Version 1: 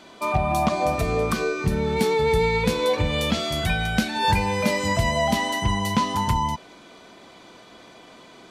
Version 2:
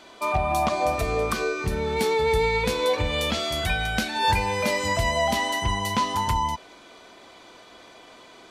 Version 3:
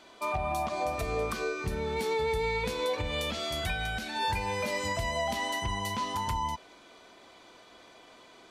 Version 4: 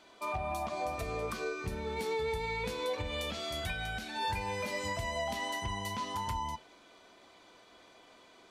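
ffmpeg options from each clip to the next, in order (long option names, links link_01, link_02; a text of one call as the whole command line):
ffmpeg -i in.wav -af "equalizer=frequency=170:width_type=o:width=1.4:gain=-8.5" out.wav
ffmpeg -i in.wav -af "alimiter=limit=-15.5dB:level=0:latency=1:release=112,volume=-6dB" out.wav
ffmpeg -i in.wav -af "flanger=delay=9.8:depth=1.1:regen=-73:speed=1.6:shape=triangular" out.wav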